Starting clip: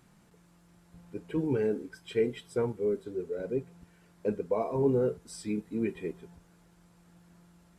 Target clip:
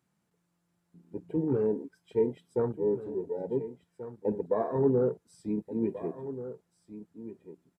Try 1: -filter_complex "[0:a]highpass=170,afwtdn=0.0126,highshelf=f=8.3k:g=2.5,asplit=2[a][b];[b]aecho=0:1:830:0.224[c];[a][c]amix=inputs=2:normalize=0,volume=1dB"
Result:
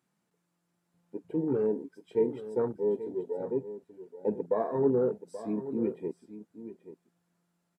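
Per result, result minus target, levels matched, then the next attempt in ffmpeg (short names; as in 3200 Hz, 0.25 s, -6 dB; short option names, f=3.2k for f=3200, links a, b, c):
echo 0.604 s early; 125 Hz band -4.5 dB
-filter_complex "[0:a]highpass=170,afwtdn=0.0126,highshelf=f=8.3k:g=2.5,asplit=2[a][b];[b]aecho=0:1:1434:0.224[c];[a][c]amix=inputs=2:normalize=0,volume=1dB"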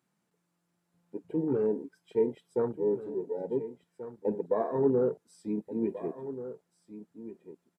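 125 Hz band -4.5 dB
-filter_complex "[0:a]highpass=80,afwtdn=0.0126,highshelf=f=8.3k:g=2.5,asplit=2[a][b];[b]aecho=0:1:1434:0.224[c];[a][c]amix=inputs=2:normalize=0,volume=1dB"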